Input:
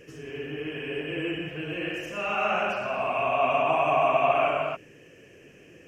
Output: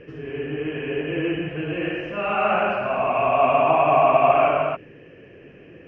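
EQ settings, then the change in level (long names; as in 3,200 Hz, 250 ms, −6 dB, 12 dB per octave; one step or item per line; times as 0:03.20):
high-frequency loss of the air 320 metres
high-shelf EQ 6,100 Hz −10.5 dB
+7.5 dB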